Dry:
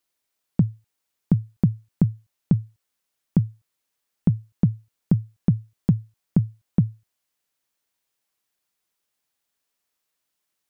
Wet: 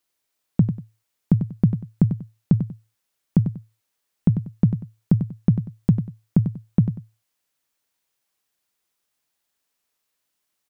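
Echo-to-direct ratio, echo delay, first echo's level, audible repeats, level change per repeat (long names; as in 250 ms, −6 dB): −8.5 dB, 95 ms, −9.0 dB, 2, −11.5 dB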